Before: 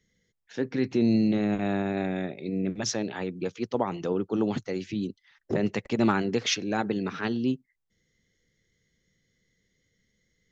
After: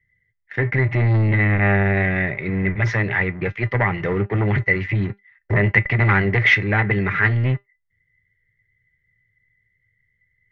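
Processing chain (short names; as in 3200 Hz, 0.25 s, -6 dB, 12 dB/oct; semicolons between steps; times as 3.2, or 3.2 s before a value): resonant low shelf 160 Hz +11 dB, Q 3; sample leveller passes 3; synth low-pass 2000 Hz, resonance Q 13; resonator 200 Hz, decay 0.16 s, harmonics all, mix 60%; gain +2 dB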